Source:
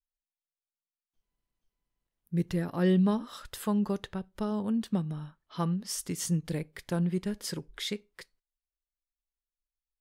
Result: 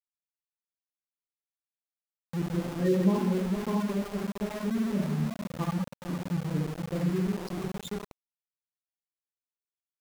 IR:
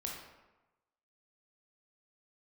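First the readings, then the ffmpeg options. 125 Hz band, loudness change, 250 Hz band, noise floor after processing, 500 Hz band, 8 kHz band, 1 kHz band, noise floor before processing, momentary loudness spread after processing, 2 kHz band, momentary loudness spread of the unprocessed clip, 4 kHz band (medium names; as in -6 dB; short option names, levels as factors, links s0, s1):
+1.0 dB, +1.0 dB, +1.0 dB, under -85 dBFS, +2.5 dB, -8.5 dB, +1.5 dB, under -85 dBFS, 10 LU, +1.5 dB, 12 LU, -5.0 dB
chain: -filter_complex "[0:a]aecho=1:1:456:0.501[s0];[1:a]atrim=start_sample=2205,asetrate=34398,aresample=44100[s1];[s0][s1]afir=irnorm=-1:irlink=0,aresample=11025,aresample=44100,afftfilt=real='re*gte(hypot(re,im),0.0708)':imag='im*gte(hypot(re,im),0.0708)':win_size=1024:overlap=0.75,aeval=exprs='val(0)*gte(abs(val(0)),0.02)':c=same"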